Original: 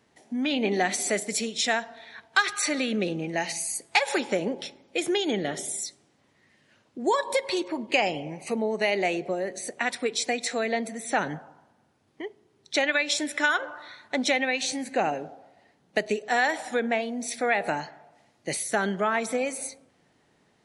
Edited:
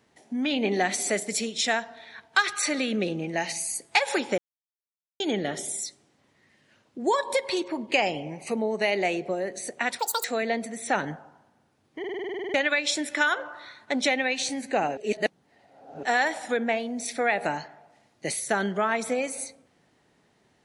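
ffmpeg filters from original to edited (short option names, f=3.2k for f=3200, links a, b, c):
-filter_complex "[0:a]asplit=18[a][b][c][d][e][f][g][h][i][j][k][l][m][n][o][p][q][r];[a]atrim=end=4.38,asetpts=PTS-STARTPTS,afade=t=out:st=4.376:d=0.004:c=hsin[s];[b]atrim=start=4.38:end=5.2,asetpts=PTS-STARTPTS,volume=0[t];[c]atrim=start=5.2:end=9.994,asetpts=PTS-STARTPTS,afade=t=in:d=0.004:c=hsin[u];[d]atrim=start=9.99:end=10.47,asetpts=PTS-STARTPTS,asetrate=84231,aresample=44100[v];[e]atrim=start=10.466:end=12.272[w];[f]atrim=start=12.218:end=12.272[x];[g]atrim=start=12.218:end=12.272[y];[h]atrim=start=12.218:end=12.272[z];[i]atrim=start=12.218:end=12.272[aa];[j]atrim=start=12.218:end=12.272[ab];[k]atrim=start=12.218:end=12.272[ac];[l]atrim=start=12.218:end=12.272[ad];[m]atrim=start=12.218:end=12.272[ae];[n]atrim=start=12.218:end=12.272[af];[o]atrim=start=12.218:end=12.272[ag];[p]atrim=start=12.768:end=15.202[ah];[q]atrim=start=15.198:end=16.262,asetpts=PTS-STARTPTS,areverse[ai];[r]atrim=start=16.258[aj];[s][t][u]concat=n=3:v=0:a=1[ak];[ak][v]acrossfade=d=0.004:c1=hsin:c2=hsin[al];[al][w]acrossfade=d=0.004:c1=hsin:c2=hsin[am];[am][x]acrossfade=d=0.004:c1=hsin:c2=hsin[an];[an][y]acrossfade=d=0.004:c1=hsin:c2=hsin[ao];[ao][z]acrossfade=d=0.004:c1=hsin:c2=hsin[ap];[ap][aa]acrossfade=d=0.004:c1=hsin:c2=hsin[aq];[aq][ab]acrossfade=d=0.004:c1=hsin:c2=hsin[ar];[ar][ac]acrossfade=d=0.004:c1=hsin:c2=hsin[as];[as][ad]acrossfade=d=0.004:c1=hsin:c2=hsin[at];[at][ae]acrossfade=d=0.004:c1=hsin:c2=hsin[au];[au][af]acrossfade=d=0.004:c1=hsin:c2=hsin[av];[av][ag]acrossfade=d=0.004:c1=hsin:c2=hsin[aw];[aw][ah]acrossfade=d=0.004:c1=hsin:c2=hsin[ax];[ax][ai]acrossfade=d=0.004:c1=hsin:c2=hsin[ay];[ay][aj]acrossfade=d=0.004:c1=hsin:c2=hsin"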